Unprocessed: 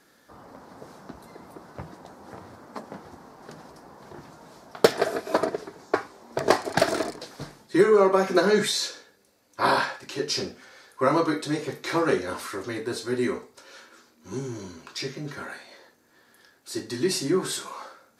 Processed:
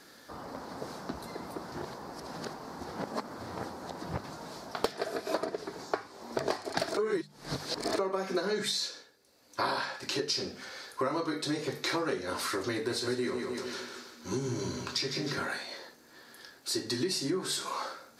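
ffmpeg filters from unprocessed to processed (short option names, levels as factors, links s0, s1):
-filter_complex "[0:a]asettb=1/sr,asplit=3[s0][s1][s2];[s0]atrim=end=12.734[s3];[s1]atrim=start=12.73:end=15.39,asetpts=PTS-STARTPTS,afade=t=in:d=0.004:c=qsin,afade=t=out:st=2.656:d=0.004:c=qsin,aecho=1:1:153|306|459|612|765:0.398|0.179|0.0806|0.0363|0.0163,atrim=end_sample=117306[s4];[s2]atrim=start=15.386[s5];[s3][s4]acrossfade=d=0.004:c1=hsin:c2=qsin[s6];[s6][s5]acrossfade=d=0.004:c1=qsin:c2=hsin,asplit=7[s7][s8][s9][s10][s11][s12][s13];[s7]atrim=end=1.722[s14];[s8]atrim=start=1.718:end=4.242,asetpts=PTS-STARTPTS,areverse[s15];[s9]atrim=start=4.238:end=6.972[s16];[s10]atrim=start=6.968:end=7.992,asetpts=PTS-STARTPTS,areverse[s17];[s11]atrim=start=7.988:end=9.08,asetpts=PTS-STARTPTS,afade=t=out:st=0.682:d=0.41:silence=0.316228[s18];[s12]atrim=start=9.08:end=9.22,asetpts=PTS-STARTPTS,volume=0.316[s19];[s13]atrim=start=9.22,asetpts=PTS-STARTPTS,afade=t=in:d=0.41:silence=0.316228[s20];[s14][s15]acrossfade=d=0.004:c1=hsin:c2=hsin[s21];[s21][s16]acrossfade=d=0.004:c1=hsin:c2=hsin[s22];[s22][s17]acrossfade=d=0.004:c1=hsin:c2=hsin[s23];[s18][s19][s20]concat=n=3:v=0:a=1[s24];[s23][s24]acrossfade=d=0.004:c1=hsin:c2=hsin,equalizer=f=4500:t=o:w=0.61:g=5.5,bandreject=f=50:t=h:w=6,bandreject=f=100:t=h:w=6,bandreject=f=150:t=h:w=6,bandreject=f=200:t=h:w=6,acompressor=threshold=0.02:ratio=6,volume=1.68"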